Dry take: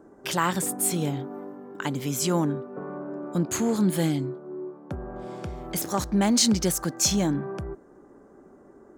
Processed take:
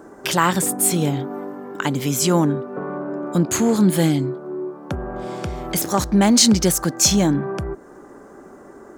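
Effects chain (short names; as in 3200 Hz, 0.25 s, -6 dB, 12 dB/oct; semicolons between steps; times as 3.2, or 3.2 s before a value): mismatched tape noise reduction encoder only; gain +7 dB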